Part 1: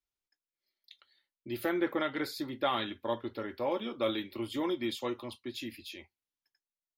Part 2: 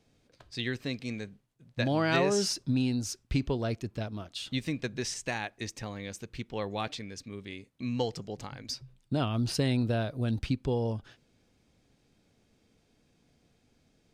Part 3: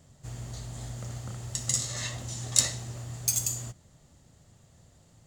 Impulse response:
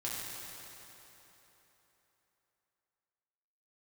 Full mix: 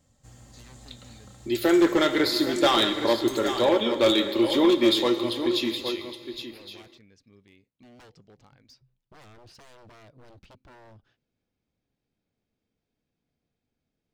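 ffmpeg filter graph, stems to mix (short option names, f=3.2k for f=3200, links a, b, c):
-filter_complex "[0:a]equalizer=f=100:t=o:w=0.67:g=-8,equalizer=f=400:t=o:w=0.67:g=6,equalizer=f=4k:t=o:w=0.67:g=9,dynaudnorm=f=200:g=13:m=10.5dB,asoftclip=type=hard:threshold=-14dB,volume=-2.5dB,asplit=3[a][b][c];[b]volume=-10.5dB[d];[c]volume=-8dB[e];[1:a]equalizer=f=11k:t=o:w=1.2:g=-11.5,aeval=exprs='0.0266*(abs(mod(val(0)/0.0266+3,4)-2)-1)':c=same,volume=-14.5dB[f];[2:a]aecho=1:1:3.8:0.53,acompressor=threshold=-38dB:ratio=2.5,volume=-9.5dB,asplit=2[g][h];[h]volume=-9.5dB[i];[3:a]atrim=start_sample=2205[j];[d][i]amix=inputs=2:normalize=0[k];[k][j]afir=irnorm=-1:irlink=0[l];[e]aecho=0:1:816:1[m];[a][f][g][l][m]amix=inputs=5:normalize=0"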